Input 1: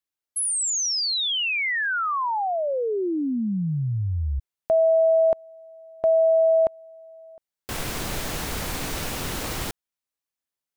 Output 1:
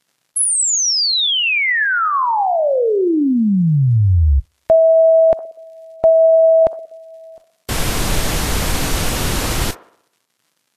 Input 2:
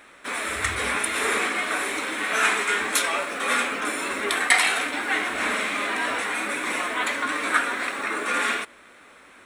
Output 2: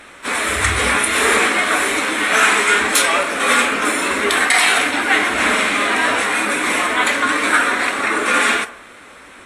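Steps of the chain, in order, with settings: low shelf 130 Hz +6 dB; crackle 170/s -55 dBFS; band-limited delay 61 ms, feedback 53%, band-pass 800 Hz, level -13 dB; maximiser +10.5 dB; gain -1.5 dB; Vorbis 32 kbps 44100 Hz

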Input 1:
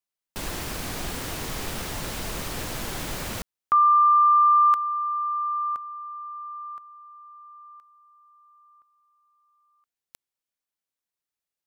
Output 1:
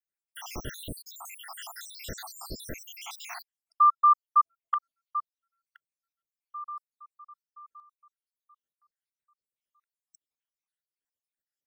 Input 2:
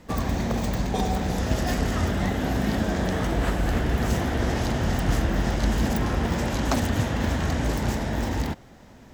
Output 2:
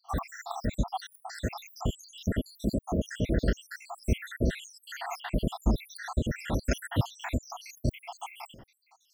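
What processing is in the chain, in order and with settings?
random spectral dropouts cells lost 84%

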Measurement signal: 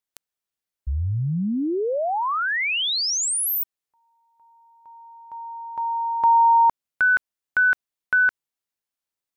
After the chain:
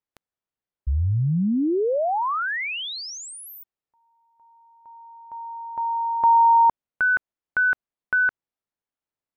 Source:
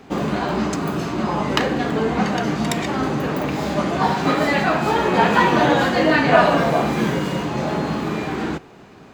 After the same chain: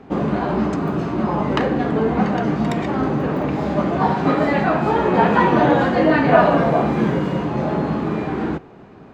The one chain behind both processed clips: LPF 1100 Hz 6 dB/oct; gain +2.5 dB

